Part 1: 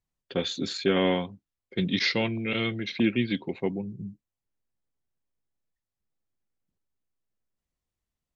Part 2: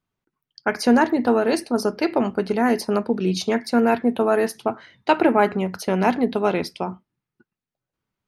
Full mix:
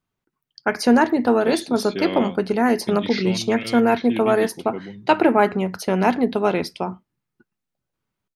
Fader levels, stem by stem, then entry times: -4.0 dB, +1.0 dB; 1.10 s, 0.00 s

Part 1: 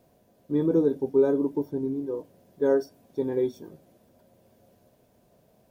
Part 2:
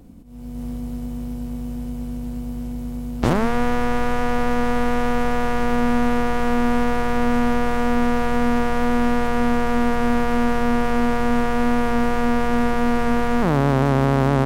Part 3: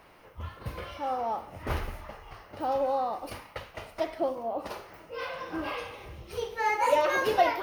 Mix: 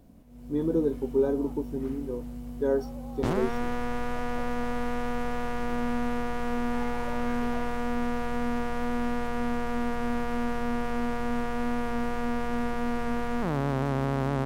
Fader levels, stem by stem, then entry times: -3.5 dB, -10.0 dB, -20.0 dB; 0.00 s, 0.00 s, 0.15 s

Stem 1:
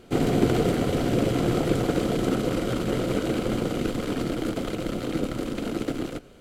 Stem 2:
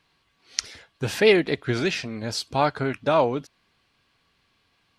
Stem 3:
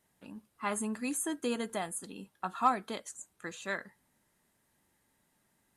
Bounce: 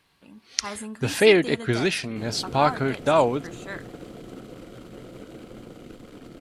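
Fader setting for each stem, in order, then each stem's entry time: -16.5 dB, +1.0 dB, -1.0 dB; 2.05 s, 0.00 s, 0.00 s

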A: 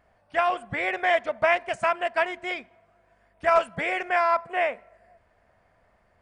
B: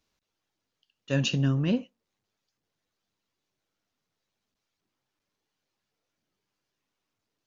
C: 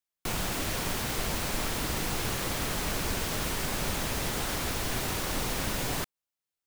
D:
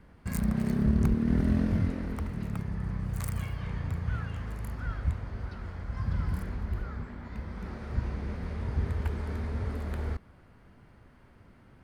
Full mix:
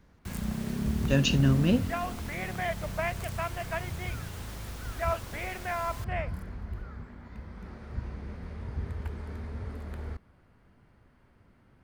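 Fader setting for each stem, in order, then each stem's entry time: -10.5 dB, +1.5 dB, -14.0 dB, -5.0 dB; 1.55 s, 0.00 s, 0.00 s, 0.00 s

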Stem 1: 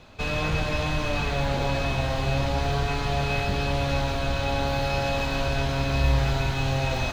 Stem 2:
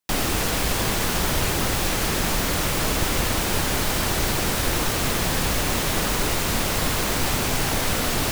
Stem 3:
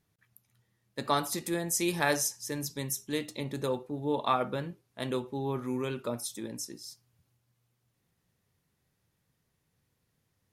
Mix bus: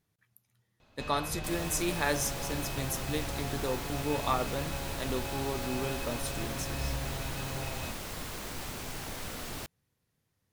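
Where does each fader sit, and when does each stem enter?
-13.5 dB, -16.5 dB, -2.5 dB; 0.80 s, 1.35 s, 0.00 s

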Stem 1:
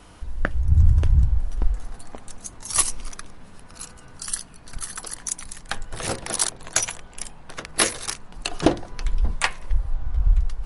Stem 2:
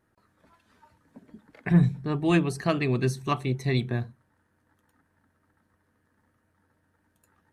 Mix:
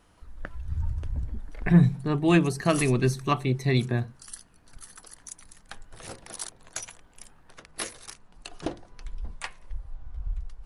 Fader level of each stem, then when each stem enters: -14.0 dB, +2.0 dB; 0.00 s, 0.00 s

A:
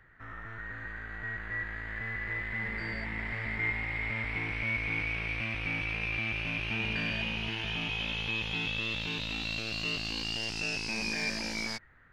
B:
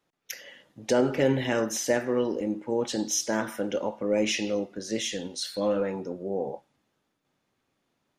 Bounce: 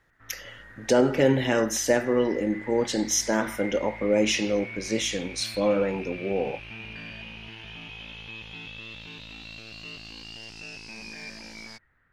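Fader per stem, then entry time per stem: -7.5 dB, +3.0 dB; 0.00 s, 0.00 s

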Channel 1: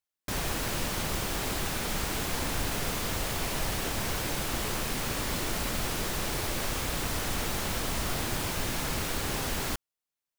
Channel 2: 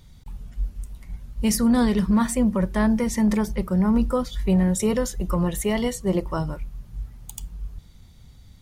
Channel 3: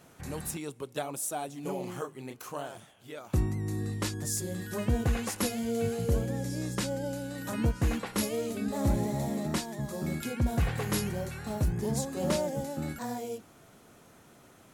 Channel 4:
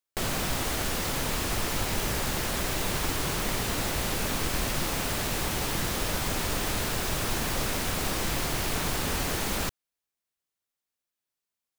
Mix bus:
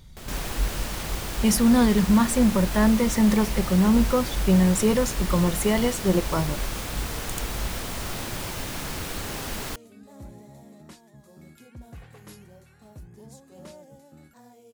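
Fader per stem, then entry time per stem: -1.5 dB, +1.0 dB, -16.0 dB, -13.0 dB; 0.00 s, 0.00 s, 1.35 s, 0.00 s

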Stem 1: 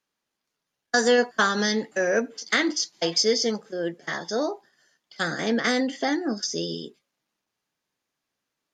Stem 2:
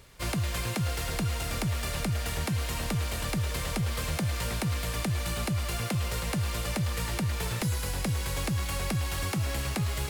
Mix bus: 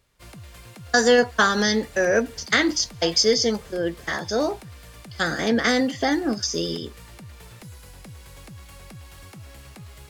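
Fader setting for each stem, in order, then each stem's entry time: +3.0 dB, -13.0 dB; 0.00 s, 0.00 s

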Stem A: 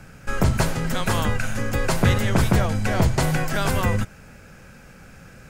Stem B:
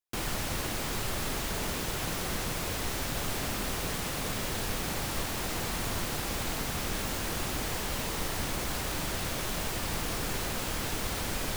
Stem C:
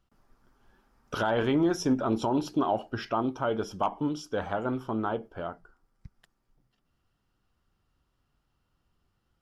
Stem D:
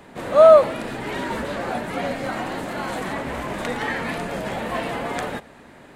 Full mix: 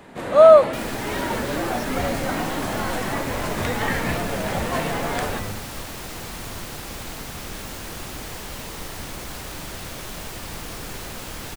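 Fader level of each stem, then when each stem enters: -12.0 dB, -1.0 dB, -8.0 dB, +0.5 dB; 1.55 s, 0.60 s, 0.00 s, 0.00 s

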